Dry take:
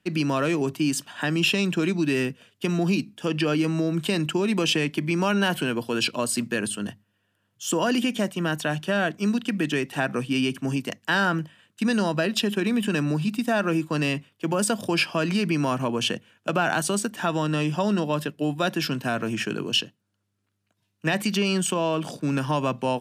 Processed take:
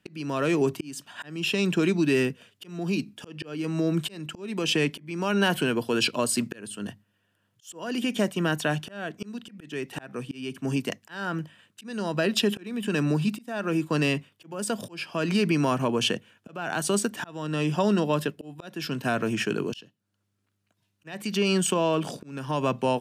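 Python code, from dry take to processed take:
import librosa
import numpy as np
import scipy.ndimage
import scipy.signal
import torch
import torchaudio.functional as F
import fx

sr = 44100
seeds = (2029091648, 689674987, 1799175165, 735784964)

y = fx.dynamic_eq(x, sr, hz=420.0, q=4.5, threshold_db=-40.0, ratio=4.0, max_db=4)
y = fx.auto_swell(y, sr, attack_ms=475.0)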